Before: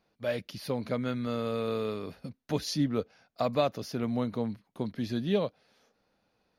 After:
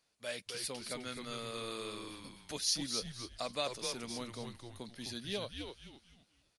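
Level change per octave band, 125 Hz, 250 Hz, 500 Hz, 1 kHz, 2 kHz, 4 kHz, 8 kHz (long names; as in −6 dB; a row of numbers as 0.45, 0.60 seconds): −14.0, −13.5, −11.5, −8.5, −2.5, +3.0, +7.5 decibels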